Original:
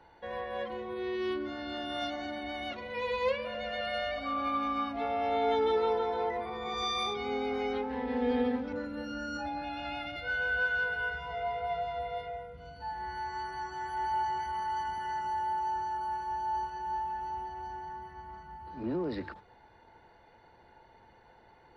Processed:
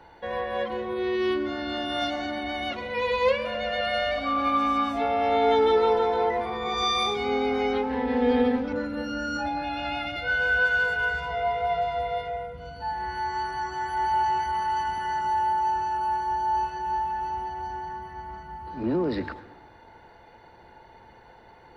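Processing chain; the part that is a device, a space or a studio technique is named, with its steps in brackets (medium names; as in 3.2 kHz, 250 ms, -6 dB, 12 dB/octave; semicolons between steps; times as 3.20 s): saturated reverb return (on a send at -14 dB: reverberation RT60 0.95 s, pre-delay 103 ms + saturation -35 dBFS, distortion -6 dB); on the sum: trim +7.5 dB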